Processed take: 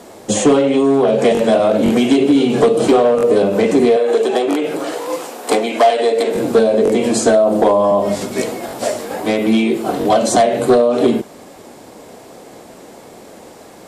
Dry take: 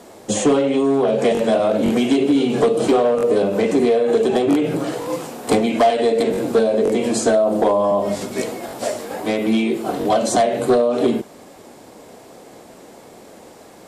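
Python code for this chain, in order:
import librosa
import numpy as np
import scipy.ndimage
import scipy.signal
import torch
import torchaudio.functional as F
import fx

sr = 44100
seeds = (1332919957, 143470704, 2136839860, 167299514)

y = fx.highpass(x, sr, hz=380.0, slope=12, at=(3.96, 6.35))
y = y * 10.0 ** (4.0 / 20.0)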